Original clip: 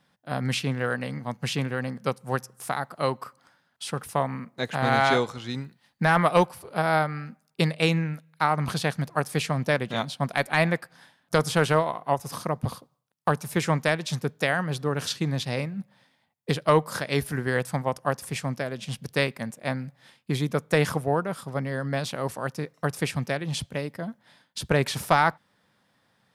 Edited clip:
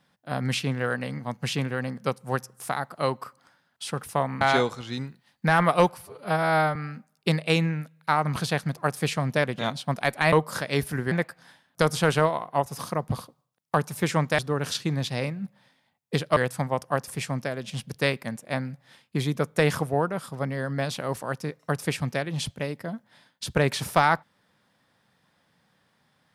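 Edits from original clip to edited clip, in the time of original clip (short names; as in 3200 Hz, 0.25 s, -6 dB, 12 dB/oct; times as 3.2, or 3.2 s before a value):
4.41–4.98 cut
6.59–7.08 stretch 1.5×
13.92–14.74 cut
16.72–17.51 move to 10.65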